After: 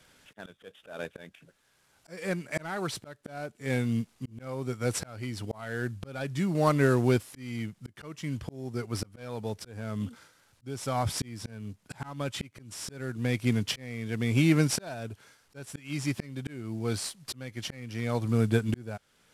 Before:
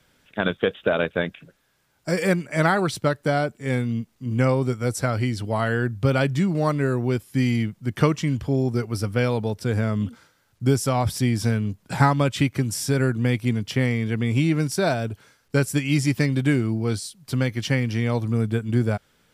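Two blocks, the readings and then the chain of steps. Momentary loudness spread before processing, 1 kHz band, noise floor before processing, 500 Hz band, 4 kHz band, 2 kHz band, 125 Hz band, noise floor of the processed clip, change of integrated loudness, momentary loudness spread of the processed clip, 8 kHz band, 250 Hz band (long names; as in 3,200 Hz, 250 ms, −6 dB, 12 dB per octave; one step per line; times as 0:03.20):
6 LU, −9.5 dB, −65 dBFS, −9.0 dB, −5.5 dB, −9.5 dB, −9.5 dB, −68 dBFS, −8.0 dB, 18 LU, −4.5 dB, −8.0 dB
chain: variable-slope delta modulation 64 kbit/s
low-shelf EQ 350 Hz −4 dB
volume swells 792 ms
level +2 dB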